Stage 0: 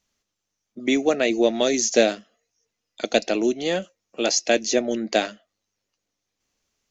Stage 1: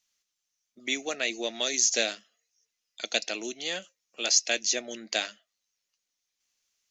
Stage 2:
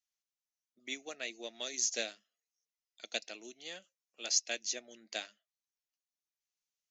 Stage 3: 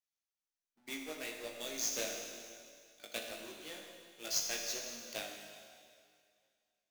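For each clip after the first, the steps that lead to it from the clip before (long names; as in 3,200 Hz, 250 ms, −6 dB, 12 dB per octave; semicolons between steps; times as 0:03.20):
tilt shelving filter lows −9.5 dB, about 1,100 Hz; level −8.5 dB
expander for the loud parts 1.5 to 1, over −38 dBFS; level −7 dB
each half-wave held at its own peak; four-comb reverb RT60 2.2 s, combs from 26 ms, DRR 2 dB; chorus effect 1.2 Hz, delay 17.5 ms, depth 2.2 ms; level −4 dB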